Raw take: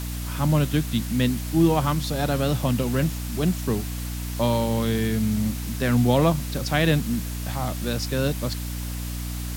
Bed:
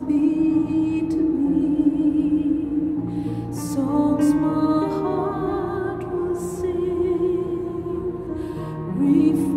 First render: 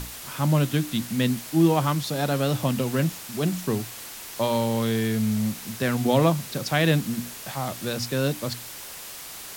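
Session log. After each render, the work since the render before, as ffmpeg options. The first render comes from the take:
ffmpeg -i in.wav -af "bandreject=frequency=60:width_type=h:width=6,bandreject=frequency=120:width_type=h:width=6,bandreject=frequency=180:width_type=h:width=6,bandreject=frequency=240:width_type=h:width=6,bandreject=frequency=300:width_type=h:width=6" out.wav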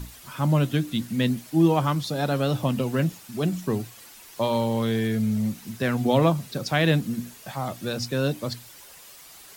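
ffmpeg -i in.wav -af "afftdn=noise_reduction=10:noise_floor=-39" out.wav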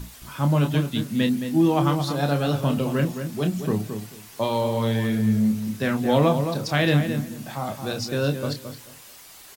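ffmpeg -i in.wav -filter_complex "[0:a]asplit=2[link_01][link_02];[link_02]adelay=28,volume=-7dB[link_03];[link_01][link_03]amix=inputs=2:normalize=0,asplit=2[link_04][link_05];[link_05]adelay=219,lowpass=frequency=2200:poles=1,volume=-7.5dB,asplit=2[link_06][link_07];[link_07]adelay=219,lowpass=frequency=2200:poles=1,volume=0.21,asplit=2[link_08][link_09];[link_09]adelay=219,lowpass=frequency=2200:poles=1,volume=0.21[link_10];[link_04][link_06][link_08][link_10]amix=inputs=4:normalize=0" out.wav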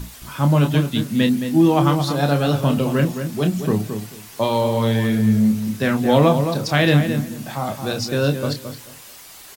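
ffmpeg -i in.wav -af "volume=4.5dB" out.wav

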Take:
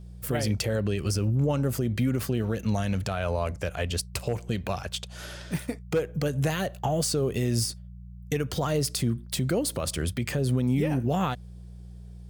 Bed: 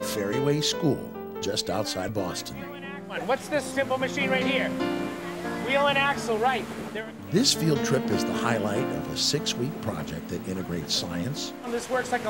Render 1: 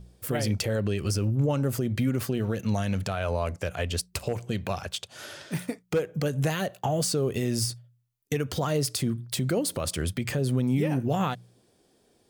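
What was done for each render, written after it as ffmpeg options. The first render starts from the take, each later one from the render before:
ffmpeg -i in.wav -af "bandreject=frequency=60:width_type=h:width=4,bandreject=frequency=120:width_type=h:width=4,bandreject=frequency=180:width_type=h:width=4" out.wav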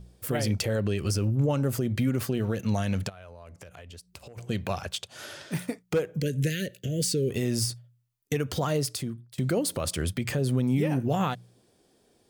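ffmpeg -i in.wav -filter_complex "[0:a]asplit=3[link_01][link_02][link_03];[link_01]afade=type=out:start_time=3.08:duration=0.02[link_04];[link_02]acompressor=threshold=-43dB:ratio=8:attack=3.2:release=140:knee=1:detection=peak,afade=type=in:start_time=3.08:duration=0.02,afade=type=out:start_time=4.37:duration=0.02[link_05];[link_03]afade=type=in:start_time=4.37:duration=0.02[link_06];[link_04][link_05][link_06]amix=inputs=3:normalize=0,asplit=3[link_07][link_08][link_09];[link_07]afade=type=out:start_time=6.2:duration=0.02[link_10];[link_08]asuperstop=centerf=930:order=8:qfactor=0.8,afade=type=in:start_time=6.2:duration=0.02,afade=type=out:start_time=7.29:duration=0.02[link_11];[link_09]afade=type=in:start_time=7.29:duration=0.02[link_12];[link_10][link_11][link_12]amix=inputs=3:normalize=0,asplit=2[link_13][link_14];[link_13]atrim=end=9.38,asetpts=PTS-STARTPTS,afade=type=out:start_time=8.71:duration=0.67:silence=0.0749894[link_15];[link_14]atrim=start=9.38,asetpts=PTS-STARTPTS,afade=type=in:duration=0.004:curve=hsin:silence=0.0749894[link_16];[link_15][link_16]concat=n=2:v=0:a=1" out.wav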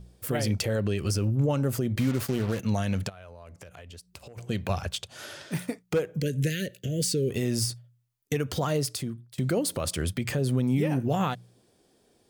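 ffmpeg -i in.wav -filter_complex "[0:a]asettb=1/sr,asplit=3[link_01][link_02][link_03];[link_01]atrim=end=1.964[link_04];[link_02]atrim=start=1.96:end=2.6,asetpts=PTS-STARTPTS,afade=type=in:duration=0.004:curve=qsin,afade=type=out:start_time=0.636:duration=0.004:curve=qsin,acrusher=bits=5:mix=0:aa=0.5[link_05];[link_03]atrim=start=2.596[link_06];[link_04][link_05]acrossfade=duration=0.004:curve1=hsin:curve2=qsin[link_07];[link_07][link_06]acrossfade=duration=0.004:curve1=qsin:curve2=hsin,asettb=1/sr,asplit=3[link_08][link_09][link_10];[link_08]atrim=end=4.694[link_11];[link_09]atrim=start=4.69:end=5.15,asetpts=PTS-STARTPTS,afade=type=in:duration=0.004:curve=qsin,afade=type=out:start_time=0.456:duration=0.004:curve=qsin,lowshelf=frequency=120:gain=10[link_12];[link_10]atrim=start=5.146[link_13];[link_11][link_12]acrossfade=duration=0.004:curve1=hsin:curve2=qsin[link_14];[link_14][link_13]acrossfade=duration=0.004:curve1=qsin:curve2=hsin" out.wav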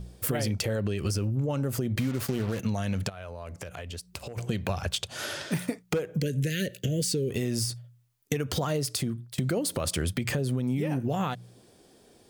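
ffmpeg -i in.wav -filter_complex "[0:a]asplit=2[link_01][link_02];[link_02]alimiter=limit=-20.5dB:level=0:latency=1:release=358,volume=2dB[link_03];[link_01][link_03]amix=inputs=2:normalize=0,acompressor=threshold=-25dB:ratio=6" out.wav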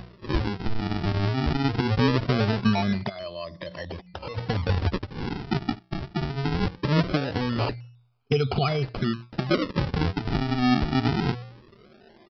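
ffmpeg -i in.wav -af "afftfilt=real='re*pow(10,22/40*sin(2*PI*(1.2*log(max(b,1)*sr/1024/100)/log(2)-(-0.33)*(pts-256)/sr)))':imag='im*pow(10,22/40*sin(2*PI*(1.2*log(max(b,1)*sr/1024/100)/log(2)-(-0.33)*(pts-256)/sr)))':win_size=1024:overlap=0.75,aresample=11025,acrusher=samples=12:mix=1:aa=0.000001:lfo=1:lforange=19.2:lforate=0.21,aresample=44100" out.wav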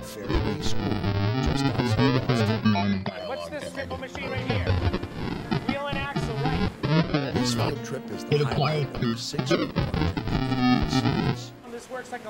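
ffmpeg -i in.wav -i bed.wav -filter_complex "[1:a]volume=-8.5dB[link_01];[0:a][link_01]amix=inputs=2:normalize=0" out.wav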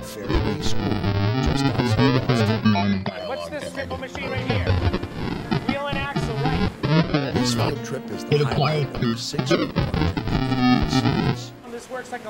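ffmpeg -i in.wav -af "volume=3.5dB" out.wav

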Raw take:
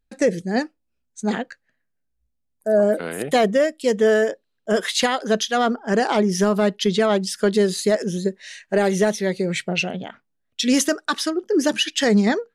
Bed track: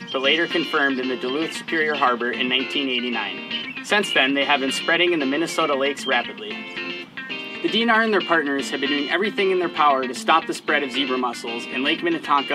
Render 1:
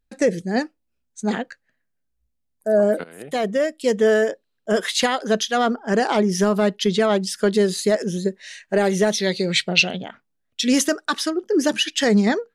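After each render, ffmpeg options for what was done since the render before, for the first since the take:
ffmpeg -i in.wav -filter_complex "[0:a]asettb=1/sr,asplit=3[link_01][link_02][link_03];[link_01]atrim=end=9.124[link_04];[link_02]atrim=start=9.12:end=9.98,asetpts=PTS-STARTPTS,afade=type=in:duration=0.004:curve=qsin,afade=type=out:start_time=0.856:duration=0.004:curve=qsin,equalizer=frequency=4000:width_type=o:width=1.1:gain=13[link_05];[link_03]atrim=start=9.976[link_06];[link_04][link_05]acrossfade=duration=0.004:curve1=hsin:curve2=qsin[link_07];[link_07][link_06]acrossfade=duration=0.004:curve1=qsin:curve2=hsin,asplit=2[link_08][link_09];[link_08]atrim=end=3.04,asetpts=PTS-STARTPTS,afade=type=out:start_time=3.036:duration=0.004:curve=hsin:silence=0.11885[link_10];[link_09]atrim=start=3.04,asetpts=PTS-STARTPTS,afade=type=in:duration=0.79:silence=0.11885[link_11];[link_10][link_11]concat=n=2:v=0:a=1" out.wav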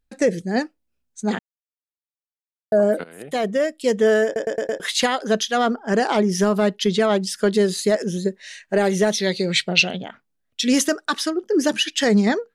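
ffmpeg -i in.wav -filter_complex "[0:a]asplit=8[link_01][link_02][link_03][link_04][link_05][link_06][link_07][link_08];[link_01]atrim=end=1.39,asetpts=PTS-STARTPTS,afade=type=out:start_time=1.386:duration=0.004:curve=hsin[link_09];[link_02]atrim=start=1.39:end=2.72,asetpts=PTS-STARTPTS,volume=0[link_10];[link_03]atrim=start=2.72:end=4.362,asetpts=PTS-STARTPTS,afade=type=in:duration=0.004:curve=hsin[link_11];[link_04]atrim=start=4.248:end=4.362[link_12];[link_05]atrim=start=4.248:end=4.362[link_13];[link_06]atrim=start=4.248:end=4.362[link_14];[link_07]atrim=start=4.248:end=4.362[link_15];[link_08]atrim=start=4.798[link_16];[link_09][link_10][link_11]concat=n=3:v=0:a=1[link_17];[link_17][link_12]acrossfade=duration=0.004:curve1=hsin:curve2=hsin[link_18];[link_18][link_13]acrossfade=duration=0.004:curve1=hsin:curve2=hsin[link_19];[link_19][link_14]acrossfade=duration=0.004:curve1=hsin:curve2=hsin[link_20];[link_20][link_15]acrossfade=duration=0.004:curve1=hsin:curve2=hsin[link_21];[link_21][link_16]acrossfade=duration=0.004:curve1=hsin:curve2=hsin" out.wav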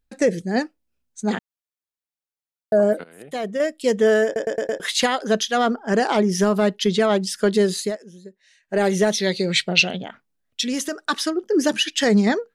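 ffmpeg -i in.wav -filter_complex "[0:a]asettb=1/sr,asplit=3[link_01][link_02][link_03];[link_01]atrim=end=10.634[link_04];[link_02]atrim=start=10.63:end=11.08,asetpts=PTS-STARTPTS,afade=type=in:duration=0.004:curve=qsin,afade=type=out:start_time=0.446:duration=0.004:curve=qsin,acompressor=threshold=-27dB:ratio=2:attack=3.2:release=140:knee=1:detection=peak[link_05];[link_03]atrim=start=11.076[link_06];[link_04][link_05]acrossfade=duration=0.004:curve1=hsin:curve2=qsin[link_07];[link_07][link_06]acrossfade=duration=0.004:curve1=qsin:curve2=hsin,asplit=5[link_08][link_09][link_10][link_11][link_12];[link_08]atrim=end=2.932[link_13];[link_09]atrim=start=2.928:end=3.602,asetpts=PTS-STARTPTS,volume=-4.5dB[link_14];[link_10]atrim=start=3.598:end=7.98,asetpts=PTS-STARTPTS,afade=type=out:start_time=4.182:duration=0.2:silence=0.11885[link_15];[link_11]atrim=start=7.98:end=8.62,asetpts=PTS-STARTPTS,volume=-18.5dB[link_16];[link_12]atrim=start=8.62,asetpts=PTS-STARTPTS,afade=type=in:duration=0.2:silence=0.11885[link_17];[link_13][link_14]acrossfade=duration=0.004:curve1=hsin:curve2=hsin[link_18];[link_15][link_16][link_17]concat=n=3:v=0:a=1[link_19];[link_18][link_19]acrossfade=duration=0.004:curve1=hsin:curve2=hsin" out.wav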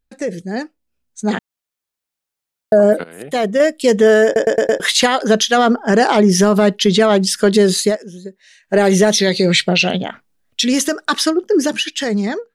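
ffmpeg -i in.wav -af "alimiter=limit=-13.5dB:level=0:latency=1:release=48,dynaudnorm=framelen=220:gausssize=13:maxgain=10.5dB" out.wav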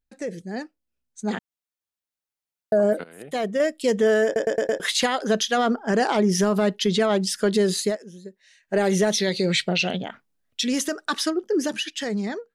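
ffmpeg -i in.wav -af "volume=-8.5dB" out.wav

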